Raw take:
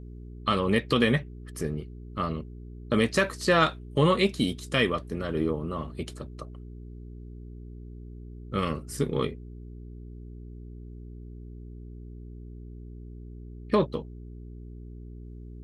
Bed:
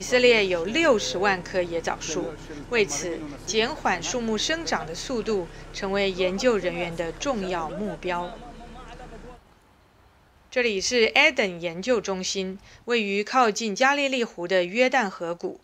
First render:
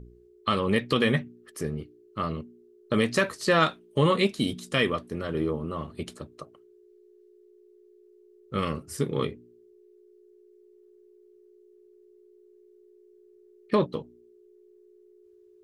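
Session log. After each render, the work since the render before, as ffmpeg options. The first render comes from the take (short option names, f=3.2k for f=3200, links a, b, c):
-af "bandreject=f=60:t=h:w=4,bandreject=f=120:t=h:w=4,bandreject=f=180:t=h:w=4,bandreject=f=240:t=h:w=4,bandreject=f=300:t=h:w=4"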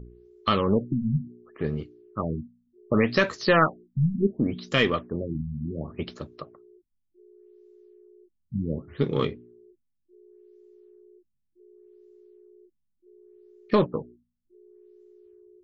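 -filter_complex "[0:a]asplit=2[a][b];[b]aeval=exprs='clip(val(0),-1,0.0376)':c=same,volume=-7.5dB[c];[a][c]amix=inputs=2:normalize=0,afftfilt=real='re*lt(b*sr/1024,220*pow(7800/220,0.5+0.5*sin(2*PI*0.68*pts/sr)))':imag='im*lt(b*sr/1024,220*pow(7800/220,0.5+0.5*sin(2*PI*0.68*pts/sr)))':win_size=1024:overlap=0.75"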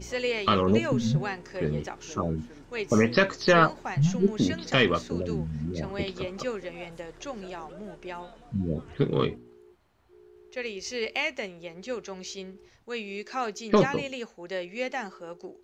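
-filter_complex "[1:a]volume=-11dB[a];[0:a][a]amix=inputs=2:normalize=0"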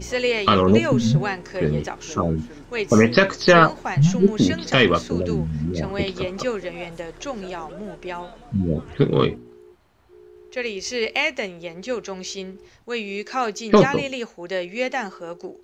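-af "volume=7dB,alimiter=limit=-2dB:level=0:latency=1"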